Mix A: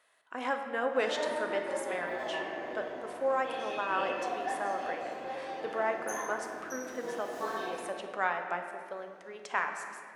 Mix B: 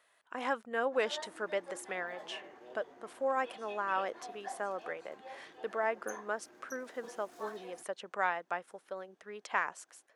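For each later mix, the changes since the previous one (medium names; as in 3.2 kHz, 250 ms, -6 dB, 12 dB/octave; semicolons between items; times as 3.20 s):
reverb: off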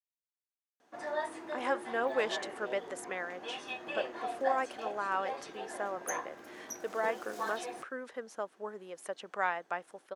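speech: entry +1.20 s; background +9.5 dB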